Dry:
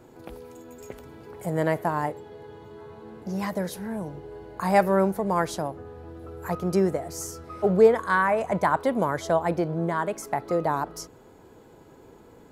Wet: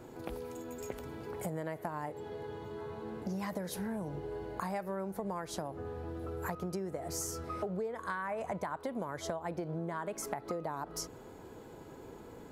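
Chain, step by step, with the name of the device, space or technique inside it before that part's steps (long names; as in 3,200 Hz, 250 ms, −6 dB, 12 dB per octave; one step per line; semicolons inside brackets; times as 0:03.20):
serial compression, peaks first (downward compressor, threshold −30 dBFS, peak gain reduction 17.5 dB; downward compressor 3 to 1, threshold −36 dBFS, peak gain reduction 7 dB)
level +1 dB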